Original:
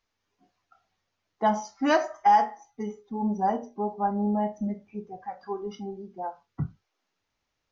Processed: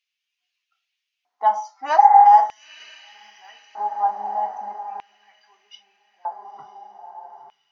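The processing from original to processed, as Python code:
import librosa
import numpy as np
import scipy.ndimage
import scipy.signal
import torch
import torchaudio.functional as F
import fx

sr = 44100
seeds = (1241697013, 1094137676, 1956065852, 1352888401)

y = fx.echo_diffused(x, sr, ms=957, feedback_pct=41, wet_db=-8.0)
y = fx.filter_lfo_highpass(y, sr, shape='square', hz=0.4, low_hz=850.0, high_hz=2700.0, q=3.6)
y = fx.spec_repair(y, sr, seeds[0], start_s=2.01, length_s=0.21, low_hz=220.0, high_hz=2200.0, source='after')
y = y * 10.0 ** (-3.5 / 20.0)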